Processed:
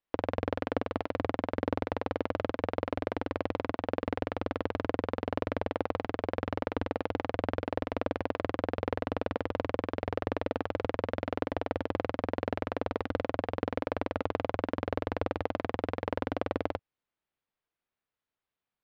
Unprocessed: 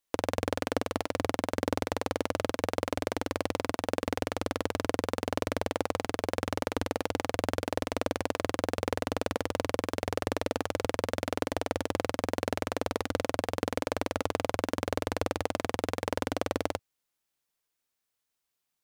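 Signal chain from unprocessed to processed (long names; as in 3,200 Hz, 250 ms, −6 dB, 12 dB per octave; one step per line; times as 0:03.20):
high-frequency loss of the air 340 metres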